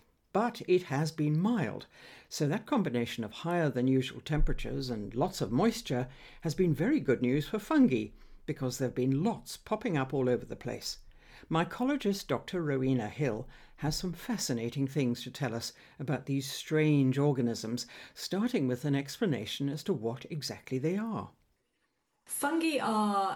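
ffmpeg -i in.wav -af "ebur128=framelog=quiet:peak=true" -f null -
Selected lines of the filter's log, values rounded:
Integrated loudness:
  I:         -32.1 LUFS
  Threshold: -42.3 LUFS
Loudness range:
  LRA:         4.1 LU
  Threshold: -52.5 LUFS
  LRA low:   -34.6 LUFS
  LRA high:  -30.5 LUFS
True peak:
  Peak:      -15.6 dBFS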